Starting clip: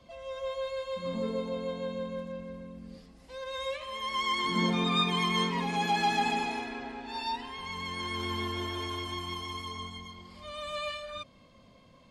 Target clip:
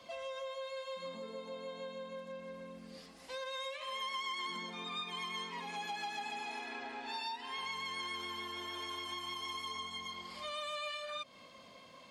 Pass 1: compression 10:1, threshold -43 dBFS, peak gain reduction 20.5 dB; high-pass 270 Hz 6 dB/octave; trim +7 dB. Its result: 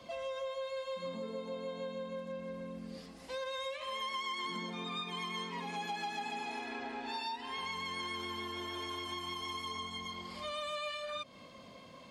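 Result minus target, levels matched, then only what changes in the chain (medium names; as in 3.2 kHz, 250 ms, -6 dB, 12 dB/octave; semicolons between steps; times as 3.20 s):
250 Hz band +5.0 dB
change: high-pass 750 Hz 6 dB/octave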